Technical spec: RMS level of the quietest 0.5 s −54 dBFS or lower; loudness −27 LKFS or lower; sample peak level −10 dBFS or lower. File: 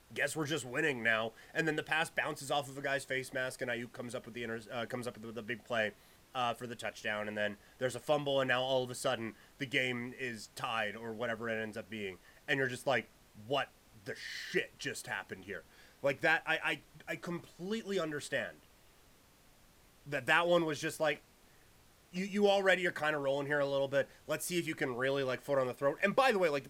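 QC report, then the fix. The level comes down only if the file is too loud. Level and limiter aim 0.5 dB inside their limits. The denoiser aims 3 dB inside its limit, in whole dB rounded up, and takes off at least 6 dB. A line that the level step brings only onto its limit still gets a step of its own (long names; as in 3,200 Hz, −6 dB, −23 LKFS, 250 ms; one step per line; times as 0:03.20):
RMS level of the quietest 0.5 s −64 dBFS: in spec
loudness −35.0 LKFS: in spec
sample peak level −13.5 dBFS: in spec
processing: no processing needed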